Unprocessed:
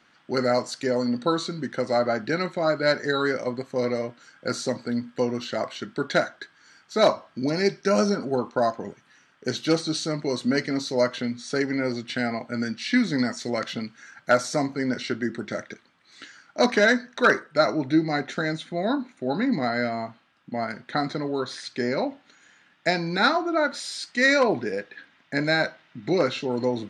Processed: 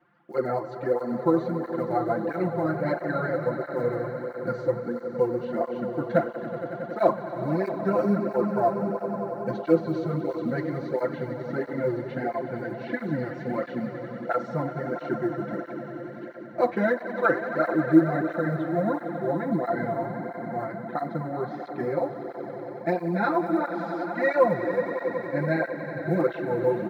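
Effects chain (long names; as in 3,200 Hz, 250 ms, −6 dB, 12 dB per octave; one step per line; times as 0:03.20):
low-pass filter 1,100 Hz 12 dB per octave
low-shelf EQ 68 Hz −5 dB
notch filter 430 Hz, Q 12
comb filter 5.8 ms, depth 86%
floating-point word with a short mantissa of 6 bits
on a send: echo that builds up and dies away 92 ms, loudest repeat 5, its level −13.5 dB
on the sum: through-zero flanger with one copy inverted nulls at 1.5 Hz, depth 5.1 ms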